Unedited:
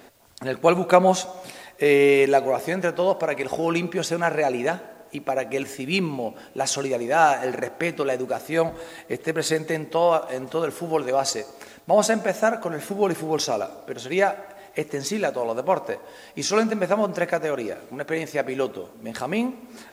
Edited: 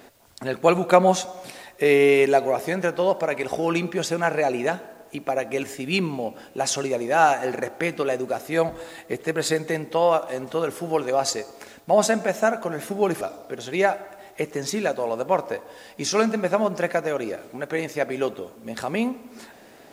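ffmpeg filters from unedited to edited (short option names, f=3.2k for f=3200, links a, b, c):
-filter_complex "[0:a]asplit=2[a][b];[a]atrim=end=13.212[c];[b]atrim=start=13.588[d];[c][d]acrossfade=d=0.004:c1=hsin:c2=hsin"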